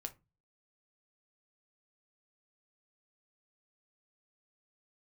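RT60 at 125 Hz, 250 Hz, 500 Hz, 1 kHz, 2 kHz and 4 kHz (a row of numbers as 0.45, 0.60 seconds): 0.55, 0.40, 0.25, 0.25, 0.20, 0.15 seconds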